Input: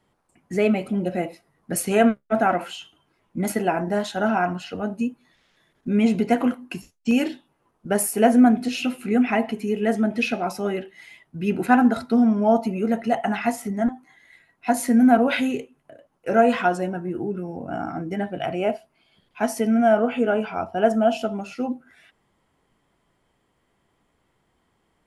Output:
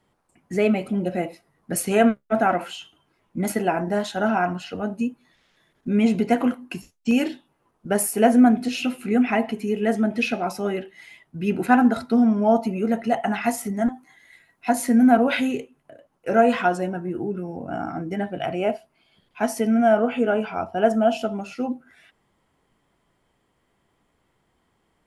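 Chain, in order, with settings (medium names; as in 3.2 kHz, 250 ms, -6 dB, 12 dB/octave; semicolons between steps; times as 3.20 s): 13.44–14.69 s: treble shelf 5.3 kHz +6.5 dB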